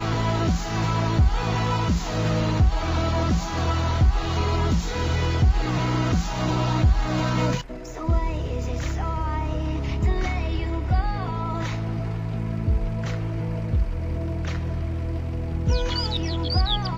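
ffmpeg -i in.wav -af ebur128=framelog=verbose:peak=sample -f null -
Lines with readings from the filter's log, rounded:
Integrated loudness:
  I:         -24.8 LUFS
  Threshold: -34.8 LUFS
Loudness range:
  LRA:         4.3 LU
  Threshold: -45.0 LUFS
  LRA low:   -27.5 LUFS
  LRA high:  -23.2 LUFS
Sample peak:
  Peak:       -9.0 dBFS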